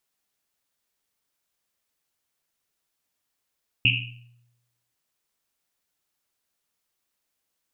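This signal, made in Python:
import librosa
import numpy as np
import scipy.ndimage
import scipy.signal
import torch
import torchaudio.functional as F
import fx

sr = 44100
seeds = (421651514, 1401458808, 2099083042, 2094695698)

y = fx.risset_drum(sr, seeds[0], length_s=1.1, hz=120.0, decay_s=0.96, noise_hz=2700.0, noise_width_hz=490.0, noise_pct=65)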